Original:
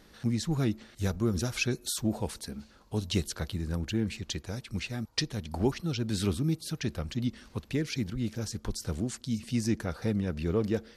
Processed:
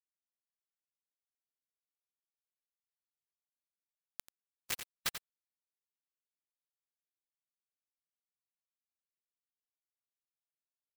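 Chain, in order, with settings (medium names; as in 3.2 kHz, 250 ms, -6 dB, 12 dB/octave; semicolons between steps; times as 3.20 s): Doppler pass-by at 4.88 s, 9 m/s, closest 1.9 m; steep high-pass 1.4 kHz; noise-vocoded speech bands 12; comb 2.8 ms, depth 76%; in parallel at -4 dB: Schmitt trigger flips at -36.5 dBFS; on the sum: low-pass that closes with the level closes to 2.6 kHz, closed at -45 dBFS; bit crusher 6-bit; ring modulator 170 Hz; delay 88 ms -18.5 dB; spectrum-flattening compressor 2:1; trim +11 dB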